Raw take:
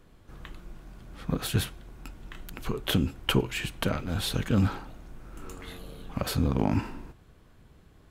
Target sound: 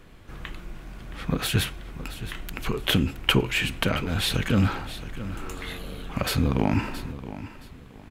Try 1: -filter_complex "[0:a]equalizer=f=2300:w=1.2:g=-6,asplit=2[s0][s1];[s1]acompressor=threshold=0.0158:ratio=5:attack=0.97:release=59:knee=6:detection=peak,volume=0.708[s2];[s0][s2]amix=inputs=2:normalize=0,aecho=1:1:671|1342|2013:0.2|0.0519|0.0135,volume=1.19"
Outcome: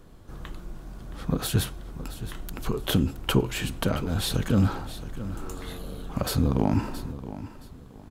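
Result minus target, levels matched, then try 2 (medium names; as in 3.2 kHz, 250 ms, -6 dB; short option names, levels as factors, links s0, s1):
2 kHz band -6.5 dB
-filter_complex "[0:a]equalizer=f=2300:w=1.2:g=6,asplit=2[s0][s1];[s1]acompressor=threshold=0.0158:ratio=5:attack=0.97:release=59:knee=6:detection=peak,volume=0.708[s2];[s0][s2]amix=inputs=2:normalize=0,aecho=1:1:671|1342|2013:0.2|0.0519|0.0135,volume=1.19"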